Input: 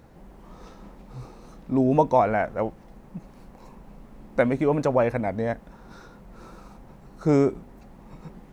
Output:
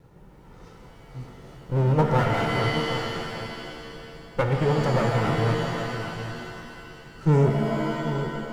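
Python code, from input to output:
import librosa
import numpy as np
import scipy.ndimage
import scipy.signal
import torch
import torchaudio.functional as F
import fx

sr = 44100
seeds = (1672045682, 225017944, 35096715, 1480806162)

y = fx.lower_of_two(x, sr, delay_ms=2.2)
y = fx.peak_eq(y, sr, hz=150.0, db=12.0, octaves=1.0)
y = y + 10.0 ** (-10.5 / 20.0) * np.pad(y, (int(782 * sr / 1000.0), 0))[:len(y)]
y = fx.rev_shimmer(y, sr, seeds[0], rt60_s=2.2, semitones=7, shimmer_db=-2, drr_db=4.0)
y = y * 10.0 ** (-4.0 / 20.0)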